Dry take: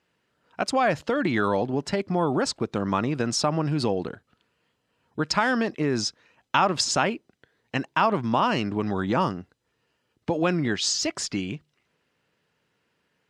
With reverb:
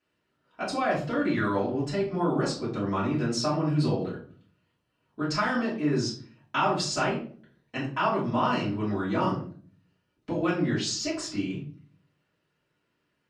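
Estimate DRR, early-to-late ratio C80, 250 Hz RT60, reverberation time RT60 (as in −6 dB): −9.0 dB, 11.5 dB, 0.65 s, 0.45 s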